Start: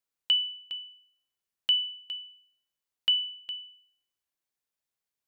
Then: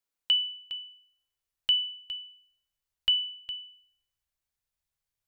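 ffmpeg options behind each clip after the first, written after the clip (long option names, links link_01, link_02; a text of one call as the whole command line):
ffmpeg -i in.wav -af "asubboost=boost=12:cutoff=81" out.wav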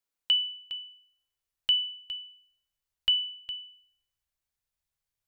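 ffmpeg -i in.wav -af anull out.wav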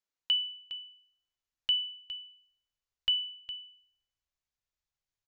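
ffmpeg -i in.wav -af "aresample=16000,aresample=44100,volume=-3.5dB" out.wav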